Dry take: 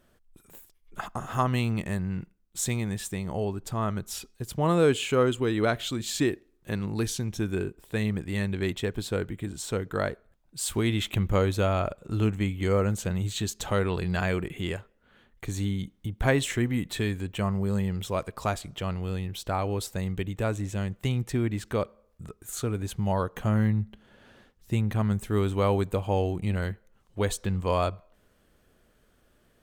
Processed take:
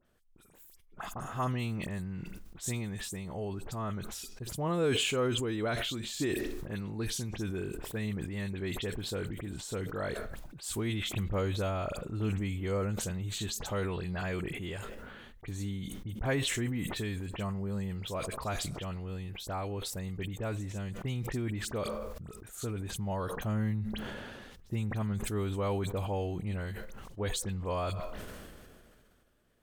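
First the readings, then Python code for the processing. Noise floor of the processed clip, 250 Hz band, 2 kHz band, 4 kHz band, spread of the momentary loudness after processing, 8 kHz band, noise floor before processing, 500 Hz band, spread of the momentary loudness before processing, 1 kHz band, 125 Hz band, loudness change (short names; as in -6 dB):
-59 dBFS, -7.0 dB, -5.0 dB, -2.0 dB, 10 LU, -3.5 dB, -65 dBFS, -7.0 dB, 10 LU, -7.0 dB, -6.5 dB, -6.5 dB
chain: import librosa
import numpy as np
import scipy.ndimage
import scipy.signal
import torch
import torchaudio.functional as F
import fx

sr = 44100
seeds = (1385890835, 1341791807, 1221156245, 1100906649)

y = fx.dispersion(x, sr, late='highs', ms=55.0, hz=3000.0)
y = fx.sustainer(y, sr, db_per_s=26.0)
y = y * librosa.db_to_amplitude(-8.0)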